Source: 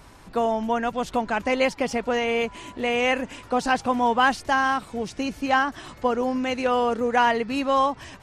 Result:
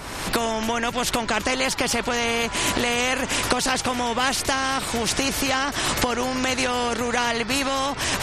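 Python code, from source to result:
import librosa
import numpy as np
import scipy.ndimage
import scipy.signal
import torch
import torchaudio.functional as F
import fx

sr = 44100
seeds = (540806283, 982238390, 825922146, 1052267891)

y = fx.recorder_agc(x, sr, target_db=-12.0, rise_db_per_s=49.0, max_gain_db=30)
y = fx.spectral_comp(y, sr, ratio=2.0)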